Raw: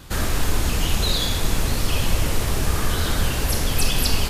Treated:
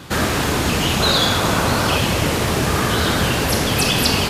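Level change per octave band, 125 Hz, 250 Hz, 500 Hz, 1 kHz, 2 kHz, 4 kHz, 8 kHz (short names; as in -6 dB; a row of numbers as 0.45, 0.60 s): +3.5, +8.5, +9.5, +10.0, +8.5, +6.5, +3.5 dB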